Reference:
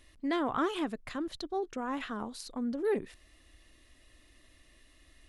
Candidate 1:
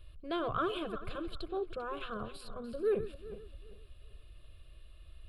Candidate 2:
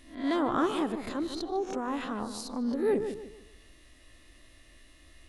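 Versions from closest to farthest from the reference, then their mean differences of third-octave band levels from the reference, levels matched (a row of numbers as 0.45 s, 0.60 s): 2, 1; 4.5 dB, 6.0 dB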